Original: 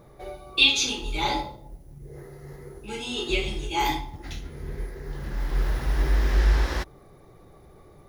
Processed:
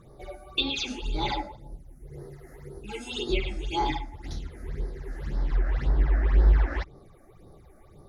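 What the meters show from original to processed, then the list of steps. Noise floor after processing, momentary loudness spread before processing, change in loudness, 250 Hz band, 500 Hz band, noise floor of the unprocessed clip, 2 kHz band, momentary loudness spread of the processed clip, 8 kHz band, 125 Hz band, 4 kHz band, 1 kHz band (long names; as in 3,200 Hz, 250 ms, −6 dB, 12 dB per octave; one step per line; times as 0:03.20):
−53 dBFS, 23 LU, −3.5 dB, −1.0 dB, −2.0 dB, −52 dBFS, −8.0 dB, 21 LU, −12.5 dB, +0.5 dB, −7.5 dB, −3.0 dB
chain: all-pass phaser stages 8, 1.9 Hz, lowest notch 120–2,700 Hz
treble cut that deepens with the level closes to 2,000 Hz, closed at −19 dBFS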